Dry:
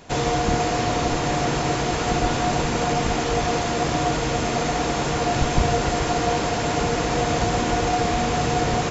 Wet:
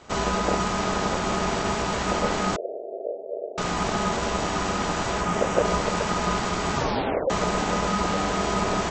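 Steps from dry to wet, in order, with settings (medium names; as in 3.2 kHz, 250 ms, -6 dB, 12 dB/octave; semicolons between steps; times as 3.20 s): 2.56–3.58 s: inverse Chebyshev band-stop 740–5500 Hz, stop band 80 dB; 5.21–5.65 s: peaking EQ 4.1 kHz -14.5 dB 0.37 oct; 6.75 s: tape stop 0.55 s; ring modulator 530 Hz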